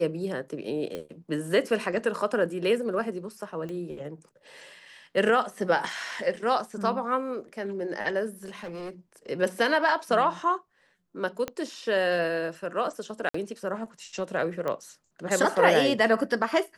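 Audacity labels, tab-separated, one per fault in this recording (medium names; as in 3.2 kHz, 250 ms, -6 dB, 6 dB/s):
0.950000	0.950000	pop -21 dBFS
3.690000	3.690000	pop -26 dBFS
8.450000	8.900000	clipped -33 dBFS
11.480000	11.480000	pop -17 dBFS
13.290000	13.340000	dropout 54 ms
14.680000	14.680000	pop -18 dBFS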